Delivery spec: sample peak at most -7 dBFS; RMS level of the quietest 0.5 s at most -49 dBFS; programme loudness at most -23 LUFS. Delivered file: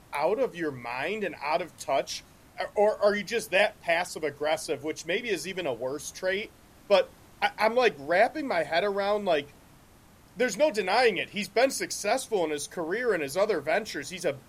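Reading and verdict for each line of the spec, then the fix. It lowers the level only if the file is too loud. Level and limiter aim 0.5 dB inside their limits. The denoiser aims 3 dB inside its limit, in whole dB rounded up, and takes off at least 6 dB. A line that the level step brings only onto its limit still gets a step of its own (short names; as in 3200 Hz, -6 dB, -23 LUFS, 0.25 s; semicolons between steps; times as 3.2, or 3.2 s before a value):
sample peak -10.0 dBFS: OK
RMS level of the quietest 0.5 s -55 dBFS: OK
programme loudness -28.0 LUFS: OK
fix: none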